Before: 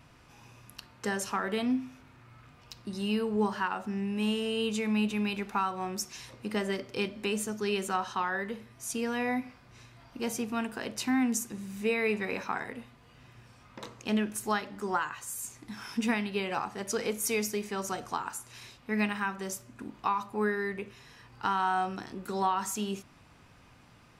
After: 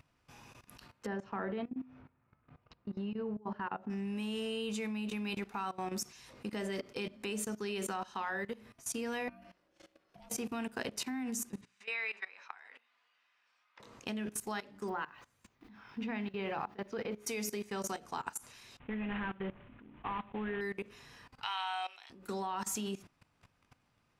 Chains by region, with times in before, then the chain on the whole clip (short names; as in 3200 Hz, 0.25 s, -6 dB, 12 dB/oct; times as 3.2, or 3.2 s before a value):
1.06–3.9 tape spacing loss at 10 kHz 42 dB + negative-ratio compressor -32 dBFS, ratio -0.5 + HPF 50 Hz
9.28–10.3 compressor 2:1, threshold -50 dBFS + ring modulator 440 Hz
11.61–13.8 HPF 1300 Hz + air absorption 120 m
14.88–17.26 added noise blue -51 dBFS + air absorption 310 m
18.79–20.61 CVSD 16 kbps + low shelf 140 Hz +9.5 dB
21.42–22.1 HPF 660 Hz 24 dB/oct + band shelf 2900 Hz +12.5 dB 1.1 oct
whole clip: notches 60/120/180/240/300/360/420 Hz; dynamic EQ 1200 Hz, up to -4 dB, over -43 dBFS, Q 2.3; level quantiser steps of 19 dB; gain +1 dB